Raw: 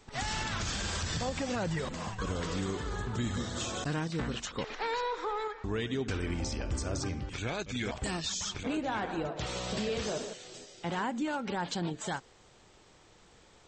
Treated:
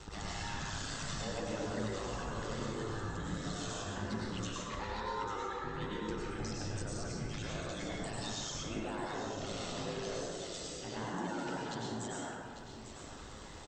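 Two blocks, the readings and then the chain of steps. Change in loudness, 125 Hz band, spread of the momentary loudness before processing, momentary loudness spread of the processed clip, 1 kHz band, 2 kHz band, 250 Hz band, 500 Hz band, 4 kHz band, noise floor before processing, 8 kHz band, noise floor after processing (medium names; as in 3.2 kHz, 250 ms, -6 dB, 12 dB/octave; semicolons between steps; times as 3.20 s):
-5.5 dB, -5.0 dB, 4 LU, 4 LU, -4.0 dB, -5.5 dB, -5.0 dB, -4.5 dB, -5.0 dB, -60 dBFS, -4.5 dB, -49 dBFS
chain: band-stop 2.3 kHz, Q 8.7; reverb removal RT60 1.6 s; compression 3:1, threshold -51 dBFS, peak gain reduction 15.5 dB; peak limiter -44.5 dBFS, peak gain reduction 11 dB; flange 0.23 Hz, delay 0.7 ms, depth 1.9 ms, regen +75%; ring modulator 53 Hz; delay 847 ms -10 dB; plate-style reverb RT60 1.5 s, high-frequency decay 0.55×, pre-delay 85 ms, DRR -4 dB; trim +15 dB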